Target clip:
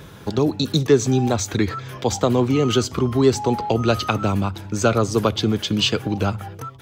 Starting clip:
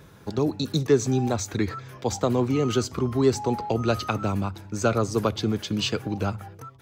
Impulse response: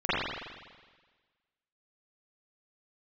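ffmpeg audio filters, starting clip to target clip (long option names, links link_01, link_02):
-filter_complex "[0:a]equalizer=frequency=3200:width=3.2:gain=5,asplit=2[link_01][link_02];[link_02]acompressor=threshold=-34dB:ratio=6,volume=-2dB[link_03];[link_01][link_03]amix=inputs=2:normalize=0,volume=3.5dB"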